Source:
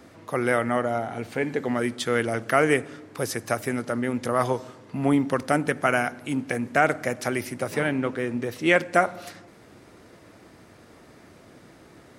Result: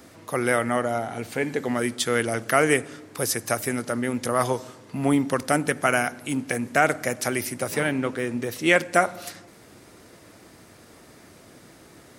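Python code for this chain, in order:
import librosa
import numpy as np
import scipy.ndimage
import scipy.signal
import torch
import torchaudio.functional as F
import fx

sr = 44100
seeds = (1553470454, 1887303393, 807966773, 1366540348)

y = fx.high_shelf(x, sr, hz=4900.0, db=10.5)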